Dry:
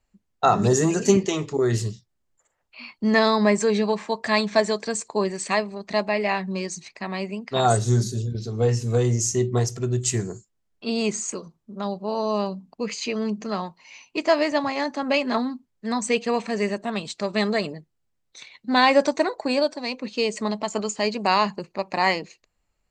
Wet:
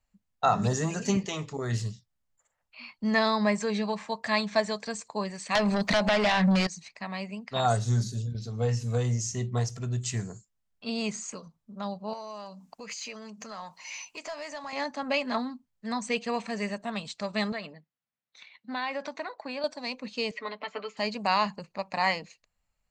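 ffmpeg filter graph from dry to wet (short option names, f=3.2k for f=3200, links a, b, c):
-filter_complex "[0:a]asettb=1/sr,asplit=3[a][b][c];[a]atrim=end=5.554[d];[b]atrim=start=5.55:end=6.67,asetpts=PTS-STARTPTS,afade=t=in:d=0.004:c=qsin,afade=t=out:st=1.116:d=0.004:c=qsin,acompressor=threshold=-28dB:ratio=6:attack=3.2:release=140:knee=1:detection=peak,aeval=exprs='0.224*sin(PI/2*5.62*val(0)/0.224)':c=same[e];[c]atrim=start=6.666[f];[d][e]acrossfade=d=0.004:c1=hsin:c2=qsin[g];[g][f]acrossfade=d=0.004:c1=qsin:c2=hsin,asettb=1/sr,asplit=3[h][i][j];[h]atrim=end=12.134[k];[i]atrim=start=12.13:end=14.73,asetpts=PTS-STARTPTS,afade=t=in:d=0.004:c=qsin,afade=t=out:st=2.596:d=0.004:c=qsin,highshelf=f=5k:t=q:w=1.5:g=6,acompressor=threshold=-40dB:ratio=4:attack=3.2:release=140:knee=1:detection=peak,asplit=2[l][m];[m]highpass=f=720:p=1,volume=17dB,asoftclip=type=tanh:threshold=-18dB[n];[l][n]amix=inputs=2:normalize=0,lowpass=f=7.7k:p=1,volume=-6dB[o];[j]atrim=start=14.726[p];[k][o]acrossfade=d=0.004:c1=hsin:c2=qsin[q];[q][p]acrossfade=d=0.004:c1=qsin:c2=hsin,asettb=1/sr,asplit=3[r][s][t];[r]atrim=end=17.524[u];[s]atrim=start=17.52:end=19.64,asetpts=PTS-STARTPTS,afade=t=in:d=0.004:c=qsin,afade=t=out:st=2.116:d=0.004:c=qsin,equalizer=f=490:t=o:w=1.9:g=-4.5,acompressor=threshold=-24dB:ratio=3:attack=3.2:release=140:knee=1:detection=peak,highpass=220,lowpass=3.5k[v];[t]atrim=start=19.636[w];[u][v]acrossfade=d=0.004:c1=hsin:c2=qsin[x];[x][w]acrossfade=d=0.004:c1=qsin:c2=hsin,asettb=1/sr,asplit=3[y][z][aa];[y]atrim=end=20.314[ab];[z]atrim=start=20.31:end=20.97,asetpts=PTS-STARTPTS,afade=t=in:d=0.004:c=qsin,afade=t=out:st=0.656:d=0.004:c=qsin,highpass=f=270:w=0.5412,highpass=f=270:w=1.3066,equalizer=f=320:t=q:w=4:g=-7,equalizer=f=600:t=q:w=4:g=-5,equalizer=f=870:t=q:w=4:g=-8,equalizer=f=2.1k:t=q:w=4:g=6,lowpass=f=3.5k:w=0.5412,lowpass=f=3.5k:w=1.3066,aecho=1:1:6.8:0.77,atrim=end_sample=29106[ac];[aa]atrim=start=20.966[ad];[ab][ac]acrossfade=d=0.004:c1=hsin:c2=qsin[ae];[ae][ad]acrossfade=d=0.004:c1=qsin:c2=hsin,acrossover=split=6800[af][ag];[ag]acompressor=threshold=-47dB:ratio=4:attack=1:release=60[ah];[af][ah]amix=inputs=2:normalize=0,equalizer=f=360:t=o:w=0.52:g=-12.5,volume=-4.5dB"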